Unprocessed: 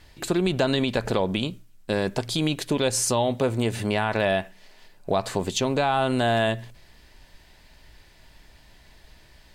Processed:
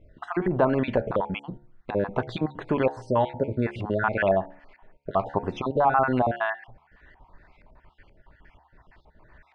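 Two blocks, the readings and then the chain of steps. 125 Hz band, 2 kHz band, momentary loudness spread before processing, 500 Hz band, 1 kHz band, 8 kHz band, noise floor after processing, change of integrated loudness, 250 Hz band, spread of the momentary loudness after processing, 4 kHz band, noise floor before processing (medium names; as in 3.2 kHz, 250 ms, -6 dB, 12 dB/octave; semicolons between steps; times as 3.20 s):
-3.0 dB, -1.5 dB, 6 LU, -0.5 dB, +2.0 dB, under -30 dB, -62 dBFS, -1.5 dB, -2.5 dB, 10 LU, -15.5 dB, -54 dBFS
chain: random holes in the spectrogram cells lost 42%; de-hum 70.93 Hz, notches 13; LFO low-pass saw up 2.1 Hz 820–2000 Hz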